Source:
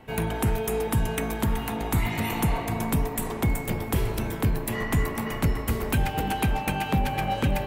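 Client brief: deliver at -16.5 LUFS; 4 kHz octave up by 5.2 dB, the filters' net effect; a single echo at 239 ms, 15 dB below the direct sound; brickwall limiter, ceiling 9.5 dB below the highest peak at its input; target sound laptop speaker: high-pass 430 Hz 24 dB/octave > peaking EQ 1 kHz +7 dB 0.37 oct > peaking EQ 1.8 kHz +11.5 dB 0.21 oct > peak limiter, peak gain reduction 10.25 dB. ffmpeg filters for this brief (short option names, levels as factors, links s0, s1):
-af "equalizer=f=4000:t=o:g=7,alimiter=limit=0.1:level=0:latency=1,highpass=f=430:w=0.5412,highpass=f=430:w=1.3066,equalizer=f=1000:t=o:w=0.37:g=7,equalizer=f=1800:t=o:w=0.21:g=11.5,aecho=1:1:239:0.178,volume=8.91,alimiter=limit=0.376:level=0:latency=1"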